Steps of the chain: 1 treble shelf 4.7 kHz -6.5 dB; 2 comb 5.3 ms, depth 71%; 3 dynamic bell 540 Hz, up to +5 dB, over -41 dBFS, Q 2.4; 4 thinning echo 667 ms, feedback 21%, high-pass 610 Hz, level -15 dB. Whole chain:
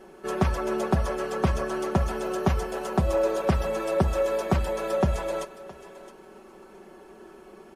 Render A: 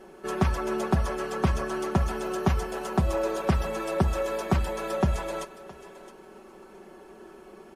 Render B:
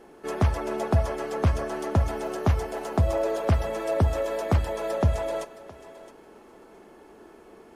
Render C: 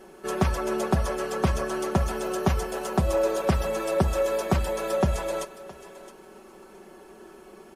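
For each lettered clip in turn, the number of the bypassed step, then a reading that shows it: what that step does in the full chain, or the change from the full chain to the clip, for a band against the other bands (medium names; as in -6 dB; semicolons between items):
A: 3, loudness change -1.5 LU; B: 2, crest factor change -2.0 dB; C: 1, 8 kHz band +4.5 dB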